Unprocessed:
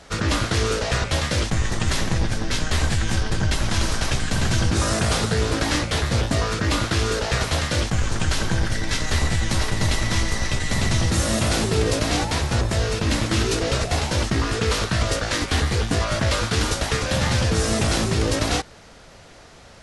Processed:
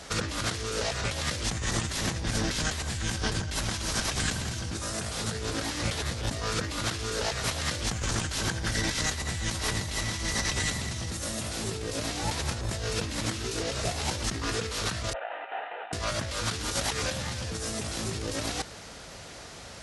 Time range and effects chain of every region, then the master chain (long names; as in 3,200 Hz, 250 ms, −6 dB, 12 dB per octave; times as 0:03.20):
0:15.13–0:15.93: variable-slope delta modulation 16 kbit/s + four-pole ladder high-pass 630 Hz, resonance 60% + notch comb filter 1,100 Hz
whole clip: high-pass filter 42 Hz; high-shelf EQ 3,800 Hz +7 dB; compressor whose output falls as the input rises −27 dBFS, ratio −1; level −4.5 dB